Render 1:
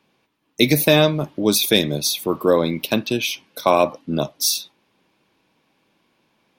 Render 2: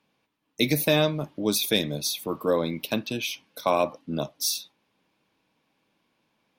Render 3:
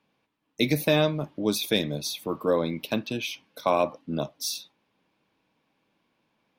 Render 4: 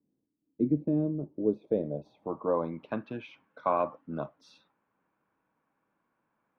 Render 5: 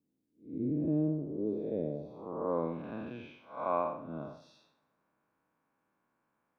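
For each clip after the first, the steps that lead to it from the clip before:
notch 370 Hz, Q 12; gain -7 dB
high shelf 5200 Hz -7.5 dB
low-pass sweep 310 Hz -> 1400 Hz, 0.98–3.04; gain -7 dB
time blur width 0.211 s; two-slope reverb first 0.93 s, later 3.2 s, from -25 dB, DRR 16 dB

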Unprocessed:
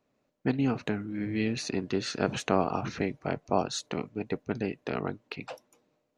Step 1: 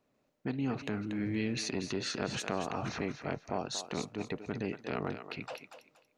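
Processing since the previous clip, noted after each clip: compressor 6:1, threshold -28 dBFS, peak gain reduction 10 dB; thinning echo 0.235 s, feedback 25%, high-pass 560 Hz, level -9 dB; transient shaper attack -5 dB, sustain +1 dB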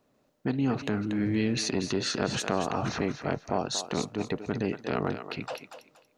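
bell 2300 Hz -4.5 dB 0.45 oct; gain +6.5 dB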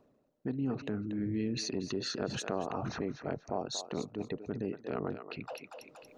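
formant sharpening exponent 1.5; reverse; upward compressor, threshold -35 dBFS; reverse; gain -6.5 dB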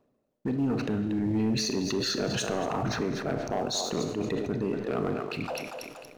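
Schroeder reverb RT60 0.87 s, combs from 25 ms, DRR 9.5 dB; sample leveller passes 2; sustainer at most 46 dB/s

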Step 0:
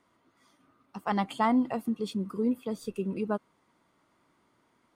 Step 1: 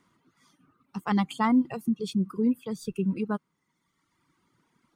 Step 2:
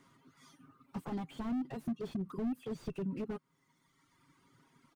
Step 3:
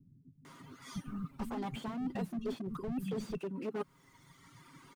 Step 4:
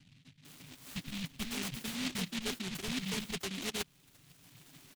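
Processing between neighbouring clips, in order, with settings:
reverb removal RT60 1.4 s; fifteen-band EQ 160 Hz +9 dB, 630 Hz -9 dB, 6300 Hz +3 dB; gain +2.5 dB
compressor 3:1, threshold -34 dBFS, peak gain reduction 12 dB; comb 7.4 ms, depth 51%; slew limiter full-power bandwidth 5.3 Hz; gain +1.5 dB
reverse; compressor 10:1, threshold -43 dBFS, peak gain reduction 12.5 dB; reverse; bands offset in time lows, highs 0.45 s, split 210 Hz; gain +11.5 dB
noise-modulated delay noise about 2900 Hz, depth 0.45 ms

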